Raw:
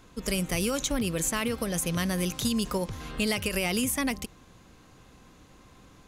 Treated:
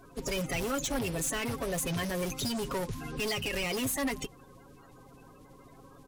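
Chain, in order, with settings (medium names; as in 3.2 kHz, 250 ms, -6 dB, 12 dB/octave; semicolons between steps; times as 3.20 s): coarse spectral quantiser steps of 30 dB; hard clipper -30 dBFS, distortion -8 dB; comb 7.3 ms, depth 48%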